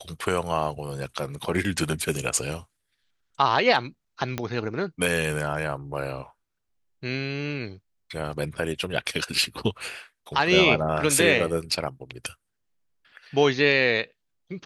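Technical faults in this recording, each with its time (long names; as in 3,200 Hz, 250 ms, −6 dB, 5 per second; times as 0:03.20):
0:04.38: click −13 dBFS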